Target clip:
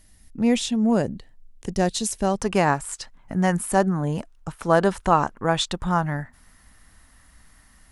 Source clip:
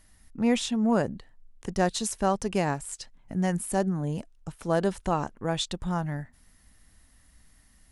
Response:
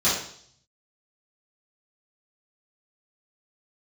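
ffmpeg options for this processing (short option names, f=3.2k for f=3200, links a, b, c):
-af "asetnsamples=n=441:p=0,asendcmd='2.38 equalizer g 7.5',equalizer=f=1.2k:w=0.95:g=-6.5,volume=4.5dB"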